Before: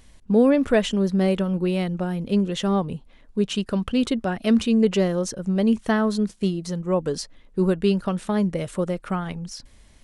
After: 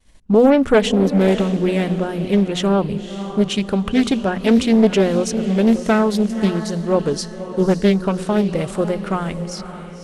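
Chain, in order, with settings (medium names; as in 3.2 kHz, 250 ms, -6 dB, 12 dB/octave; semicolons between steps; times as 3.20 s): expander -43 dBFS; hum notches 60/120/180/240 Hz; on a send: echo that smears into a reverb 557 ms, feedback 42%, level -11 dB; on the sum: loudspeaker Doppler distortion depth 0.39 ms; trim +5.5 dB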